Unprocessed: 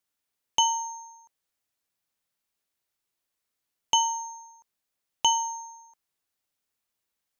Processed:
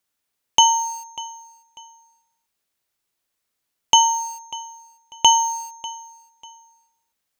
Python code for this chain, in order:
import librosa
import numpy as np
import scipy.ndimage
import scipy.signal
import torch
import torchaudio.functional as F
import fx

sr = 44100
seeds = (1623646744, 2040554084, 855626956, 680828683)

p1 = np.where(np.abs(x) >= 10.0 ** (-39.0 / 20.0), x, 0.0)
p2 = x + (p1 * librosa.db_to_amplitude(-5.0))
p3 = fx.echo_feedback(p2, sr, ms=594, feedback_pct=29, wet_db=-19)
y = p3 * librosa.db_to_amplitude(5.0)